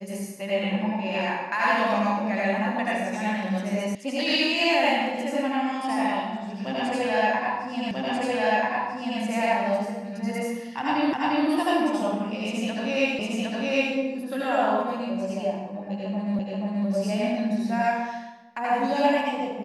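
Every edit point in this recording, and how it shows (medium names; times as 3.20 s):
3.95 s: sound stops dead
7.91 s: repeat of the last 1.29 s
11.13 s: repeat of the last 0.35 s
13.19 s: repeat of the last 0.76 s
16.39 s: repeat of the last 0.48 s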